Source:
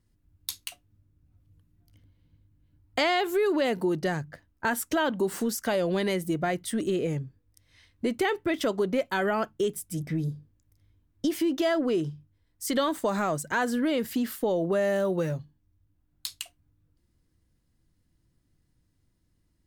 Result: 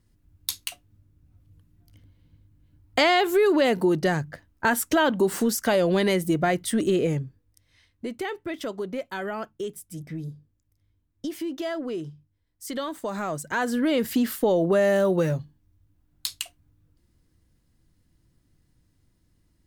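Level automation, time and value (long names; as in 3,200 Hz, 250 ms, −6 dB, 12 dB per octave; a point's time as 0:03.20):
0:07.04 +5 dB
0:08.05 −5 dB
0:12.94 −5 dB
0:14.09 +5 dB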